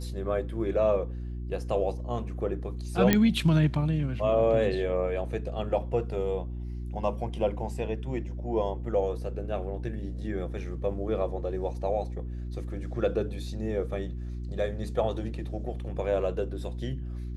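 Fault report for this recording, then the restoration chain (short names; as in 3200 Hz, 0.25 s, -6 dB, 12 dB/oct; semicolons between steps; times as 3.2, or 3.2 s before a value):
hum 60 Hz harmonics 6 -35 dBFS
3.13 pop -7 dBFS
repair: de-click; de-hum 60 Hz, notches 6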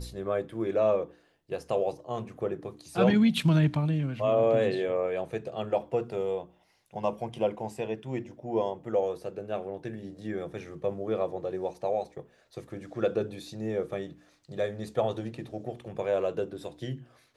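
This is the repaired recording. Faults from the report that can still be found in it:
none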